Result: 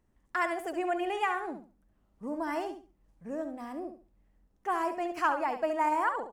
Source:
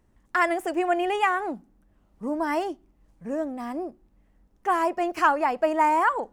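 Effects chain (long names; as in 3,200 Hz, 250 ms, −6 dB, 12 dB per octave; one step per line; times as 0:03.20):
repeating echo 69 ms, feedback 23%, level −9 dB
level −7.5 dB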